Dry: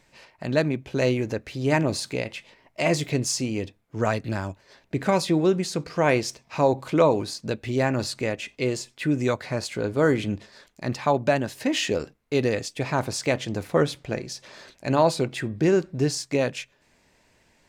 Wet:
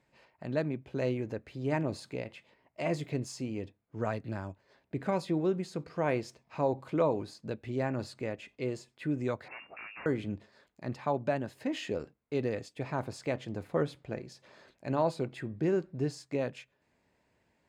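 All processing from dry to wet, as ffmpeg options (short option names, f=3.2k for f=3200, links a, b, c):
-filter_complex "[0:a]asettb=1/sr,asplit=3[a][b][c];[a]atrim=end=9.484[d];[b]atrim=start=9.48:end=10.06,asetpts=PTS-STARTPTS,afade=t=in:d=0.004:c=qsin,afade=t=out:st=0.576:d=0.004:c=qsin,highpass=96,aeval=exprs='0.0447*(abs(mod(val(0)/0.0447+3,4)-2)-1)':c=same,lowpass=f=2.4k:t=q:w=0.5098,lowpass=f=2.4k:t=q:w=0.6013,lowpass=f=2.4k:t=q:w=0.9,lowpass=f=2.4k:t=q:w=2.563,afreqshift=-2800[e];[c]atrim=start=10.056[f];[d][e]acrossfade=d=0.004:c1=hsin:c2=qsin[g];[g][f]acrossfade=d=0.004:c1=qsin:c2=hsin,highpass=56,highshelf=f=2.6k:g=-10.5,bandreject=f=5.8k:w=13,volume=-8.5dB"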